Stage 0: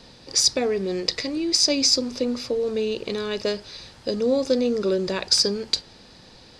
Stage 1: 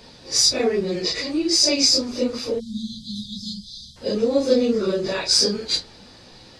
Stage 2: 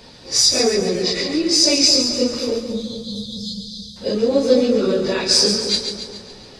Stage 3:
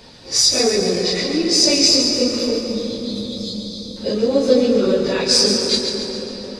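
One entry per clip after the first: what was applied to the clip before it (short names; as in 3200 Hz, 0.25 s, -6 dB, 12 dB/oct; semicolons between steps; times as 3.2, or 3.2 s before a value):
phase scrambler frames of 0.1 s; spectral delete 2.6–3.96, 240–3100 Hz; gain +2.5 dB
split-band echo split 1200 Hz, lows 0.216 s, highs 0.139 s, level -7 dB; gain +2.5 dB
reverb RT60 5.2 s, pre-delay 0.114 s, DRR 6.5 dB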